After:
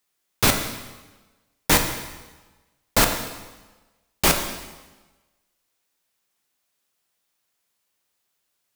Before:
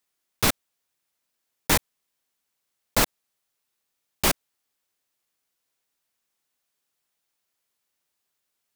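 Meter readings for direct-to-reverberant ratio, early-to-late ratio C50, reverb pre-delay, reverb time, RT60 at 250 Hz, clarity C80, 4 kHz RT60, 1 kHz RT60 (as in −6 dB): 4.5 dB, 7.0 dB, 7 ms, 1.2 s, 1.2 s, 9.0 dB, 1.1 s, 1.2 s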